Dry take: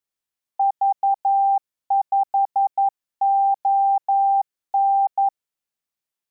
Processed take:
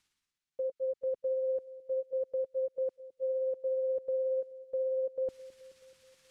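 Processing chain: rotating-head pitch shifter -7 st; peaking EQ 590 Hz -14.5 dB 1.3 oct; reverse; upward compressor, threshold -41 dBFS; reverse; distance through air 55 m; on a send: feedback echo behind a low-pass 214 ms, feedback 60%, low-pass 580 Hz, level -17 dB

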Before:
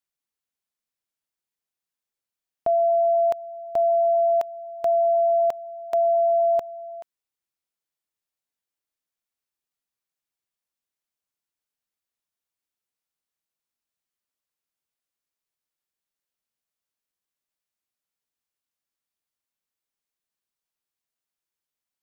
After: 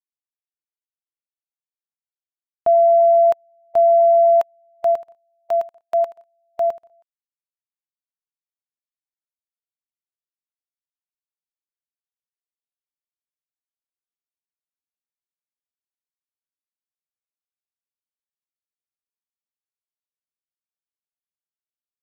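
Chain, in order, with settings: peaking EQ 1.2 kHz +5.5 dB 2 oct; 4.73–6.90 s: bouncing-ball echo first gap 110 ms, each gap 0.7×, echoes 5; upward expansion 2.5:1, over -36 dBFS; trim +3.5 dB

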